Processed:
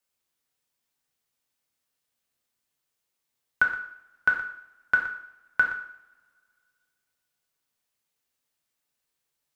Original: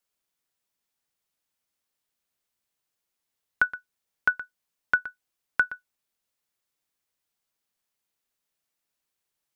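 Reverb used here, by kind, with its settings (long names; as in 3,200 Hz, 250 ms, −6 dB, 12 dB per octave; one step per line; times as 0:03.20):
coupled-rooms reverb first 0.62 s, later 2.2 s, from −25 dB, DRR 1 dB
level −1 dB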